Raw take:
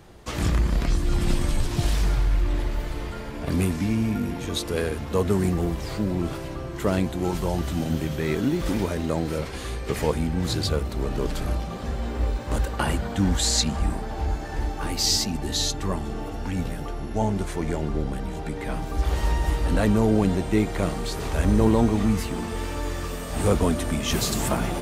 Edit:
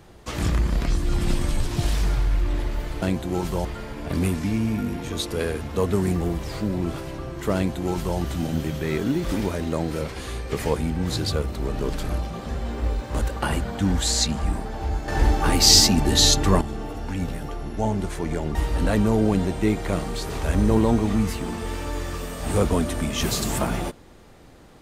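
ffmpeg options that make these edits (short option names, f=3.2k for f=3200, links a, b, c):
-filter_complex "[0:a]asplit=6[a][b][c][d][e][f];[a]atrim=end=3.022[g];[b]atrim=start=6.918:end=7.552[h];[c]atrim=start=3.018:end=14.452[i];[d]atrim=start=14.448:end=15.982,asetpts=PTS-STARTPTS,volume=8.5dB[j];[e]atrim=start=15.978:end=17.922[k];[f]atrim=start=19.448[l];[g][h]acrossfade=d=0.004:c1=hsin:c2=hsin[m];[m][i]acrossfade=d=0.004:c1=hsin:c2=hsin[n];[n][j]acrossfade=d=0.004:c1=hsin:c2=hsin[o];[o][k]acrossfade=d=0.004:c1=hsin:c2=hsin[p];[p][l]acrossfade=d=0.004:c1=hsin:c2=hsin"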